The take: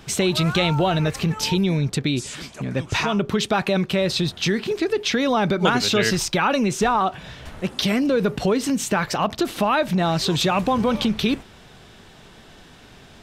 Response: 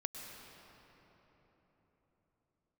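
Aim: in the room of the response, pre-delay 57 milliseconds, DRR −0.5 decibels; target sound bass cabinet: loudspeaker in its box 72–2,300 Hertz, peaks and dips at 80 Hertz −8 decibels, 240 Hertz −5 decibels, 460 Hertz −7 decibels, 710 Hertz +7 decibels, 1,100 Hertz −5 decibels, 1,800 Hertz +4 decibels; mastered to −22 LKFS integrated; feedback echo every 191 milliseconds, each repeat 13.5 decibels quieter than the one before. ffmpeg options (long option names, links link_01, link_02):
-filter_complex "[0:a]aecho=1:1:191|382:0.211|0.0444,asplit=2[link_01][link_02];[1:a]atrim=start_sample=2205,adelay=57[link_03];[link_02][link_03]afir=irnorm=-1:irlink=0,volume=1dB[link_04];[link_01][link_04]amix=inputs=2:normalize=0,highpass=frequency=72:width=0.5412,highpass=frequency=72:width=1.3066,equalizer=frequency=80:width_type=q:width=4:gain=-8,equalizer=frequency=240:width_type=q:width=4:gain=-5,equalizer=frequency=460:width_type=q:width=4:gain=-7,equalizer=frequency=710:width_type=q:width=4:gain=7,equalizer=frequency=1100:width_type=q:width=4:gain=-5,equalizer=frequency=1800:width_type=q:width=4:gain=4,lowpass=frequency=2300:width=0.5412,lowpass=frequency=2300:width=1.3066,volume=-2.5dB"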